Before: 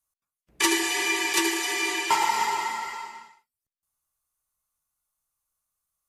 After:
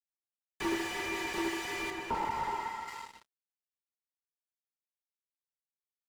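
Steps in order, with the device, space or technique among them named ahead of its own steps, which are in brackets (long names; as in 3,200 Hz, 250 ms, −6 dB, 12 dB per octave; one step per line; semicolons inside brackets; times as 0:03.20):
early transistor amplifier (dead-zone distortion −42 dBFS; slew-rate limiting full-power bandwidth 64 Hz)
0:01.90–0:02.88: high-shelf EQ 2,200 Hz −9 dB
level −4.5 dB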